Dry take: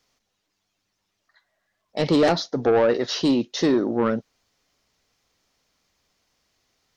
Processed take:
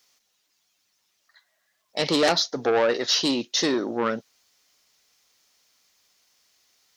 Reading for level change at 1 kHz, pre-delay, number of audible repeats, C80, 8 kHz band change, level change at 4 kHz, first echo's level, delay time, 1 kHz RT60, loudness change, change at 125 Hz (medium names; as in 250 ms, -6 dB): -0.5 dB, no reverb, no echo, no reverb, +8.0 dB, +6.0 dB, no echo, no echo, no reverb, -1.5 dB, -8.0 dB